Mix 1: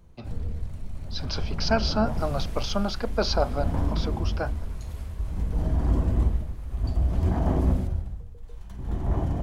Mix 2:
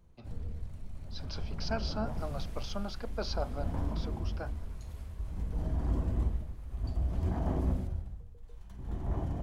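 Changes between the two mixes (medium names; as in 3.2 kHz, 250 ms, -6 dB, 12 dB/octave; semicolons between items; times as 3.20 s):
speech -11.5 dB; first sound -8.0 dB; second sound -8.5 dB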